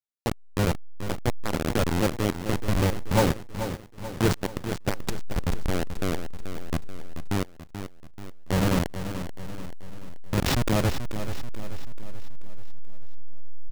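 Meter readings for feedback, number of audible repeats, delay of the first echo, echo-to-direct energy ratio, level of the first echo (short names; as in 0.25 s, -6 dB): 51%, 5, 0.434 s, -8.5 dB, -10.0 dB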